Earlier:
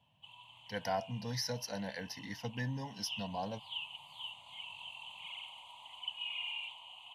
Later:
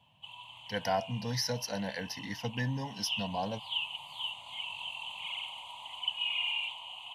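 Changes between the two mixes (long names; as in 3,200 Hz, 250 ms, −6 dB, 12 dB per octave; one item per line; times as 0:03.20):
speech +4.5 dB
background +7.5 dB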